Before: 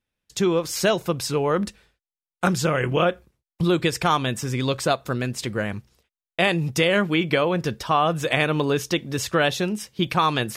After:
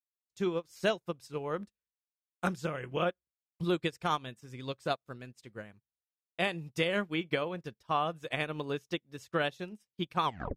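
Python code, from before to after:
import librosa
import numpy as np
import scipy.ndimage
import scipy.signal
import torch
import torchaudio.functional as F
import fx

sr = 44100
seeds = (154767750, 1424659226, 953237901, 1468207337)

y = fx.tape_stop_end(x, sr, length_s=0.32)
y = fx.upward_expand(y, sr, threshold_db=-41.0, expansion=2.5)
y = F.gain(torch.from_numpy(y), -7.5).numpy()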